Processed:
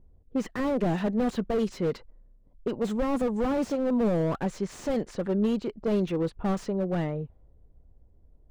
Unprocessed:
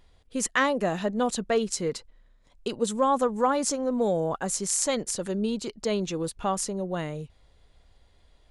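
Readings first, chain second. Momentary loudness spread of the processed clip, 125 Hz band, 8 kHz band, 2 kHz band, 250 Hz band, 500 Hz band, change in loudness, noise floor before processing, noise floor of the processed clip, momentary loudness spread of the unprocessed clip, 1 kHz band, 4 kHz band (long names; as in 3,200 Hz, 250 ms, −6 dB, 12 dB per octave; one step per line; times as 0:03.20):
7 LU, +4.0 dB, −20.0 dB, −8.0 dB, +3.0 dB, −1.0 dB, −1.0 dB, −61 dBFS, −58 dBFS, 9 LU, −7.0 dB, −9.5 dB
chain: low-pass that shuts in the quiet parts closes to 340 Hz, open at −20 dBFS
slew-rate limiting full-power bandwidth 21 Hz
level +3 dB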